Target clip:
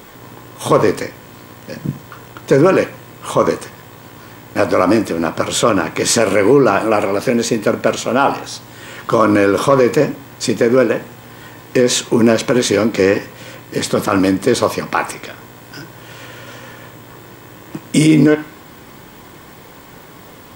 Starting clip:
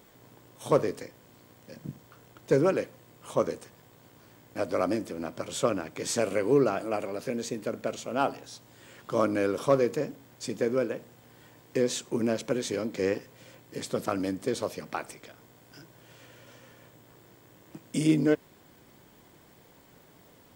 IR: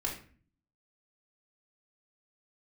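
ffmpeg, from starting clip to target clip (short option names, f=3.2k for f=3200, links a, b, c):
-filter_complex "[0:a]asplit=2[a][b];[b]lowshelf=f=670:t=q:w=3:g=-11.5[c];[1:a]atrim=start_sample=2205,lowpass=4.4k[d];[c][d]afir=irnorm=-1:irlink=0,volume=-10dB[e];[a][e]amix=inputs=2:normalize=0,alimiter=level_in=18dB:limit=-1dB:release=50:level=0:latency=1,volume=-1dB"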